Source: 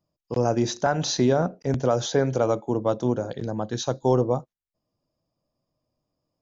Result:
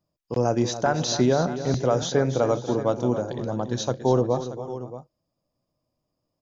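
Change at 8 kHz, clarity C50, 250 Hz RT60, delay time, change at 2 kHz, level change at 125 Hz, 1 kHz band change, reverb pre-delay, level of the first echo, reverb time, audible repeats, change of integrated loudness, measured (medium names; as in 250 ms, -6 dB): no reading, no reverb, no reverb, 282 ms, +0.5 dB, +0.5 dB, +0.5 dB, no reverb, -12.0 dB, no reverb, 3, 0.0 dB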